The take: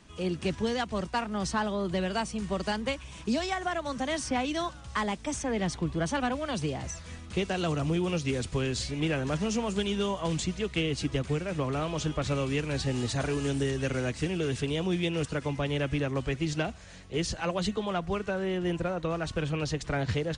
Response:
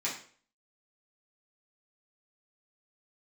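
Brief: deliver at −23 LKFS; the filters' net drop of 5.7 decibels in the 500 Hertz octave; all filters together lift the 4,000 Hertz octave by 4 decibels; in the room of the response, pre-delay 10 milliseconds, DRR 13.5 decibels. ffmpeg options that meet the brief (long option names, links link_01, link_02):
-filter_complex "[0:a]equalizer=frequency=500:width_type=o:gain=-7.5,equalizer=frequency=4000:width_type=o:gain=5.5,asplit=2[link_01][link_02];[1:a]atrim=start_sample=2205,adelay=10[link_03];[link_02][link_03]afir=irnorm=-1:irlink=0,volume=-19.5dB[link_04];[link_01][link_04]amix=inputs=2:normalize=0,volume=8.5dB"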